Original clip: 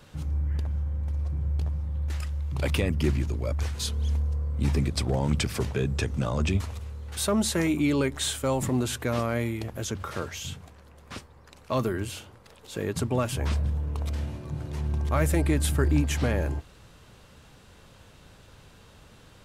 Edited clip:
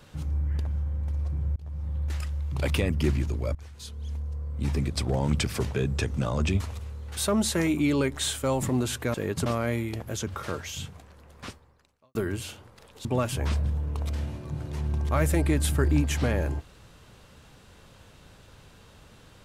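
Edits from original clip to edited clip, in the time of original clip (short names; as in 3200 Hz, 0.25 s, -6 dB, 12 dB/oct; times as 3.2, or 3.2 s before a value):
1.56–1.88 fade in
3.55–5.21 fade in, from -18.5 dB
11.14–11.83 fade out quadratic
12.73–13.05 move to 9.14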